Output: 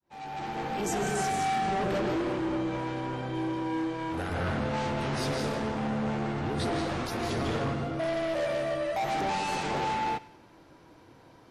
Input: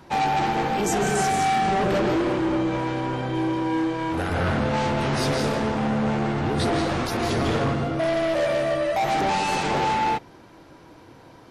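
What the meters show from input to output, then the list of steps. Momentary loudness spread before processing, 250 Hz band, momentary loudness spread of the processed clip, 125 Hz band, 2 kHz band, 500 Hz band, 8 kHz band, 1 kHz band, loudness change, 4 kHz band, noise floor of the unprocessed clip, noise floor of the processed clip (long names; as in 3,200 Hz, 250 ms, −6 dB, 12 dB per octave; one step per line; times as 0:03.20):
4 LU, −7.0 dB, 5 LU, −7.0 dB, −7.0 dB, −7.0 dB, −7.0 dB, −7.5 dB, −7.0 dB, −7.0 dB, −48 dBFS, −55 dBFS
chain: fade in at the beginning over 0.86 s
delay with a high-pass on its return 95 ms, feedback 46%, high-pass 1,400 Hz, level −18 dB
level −7 dB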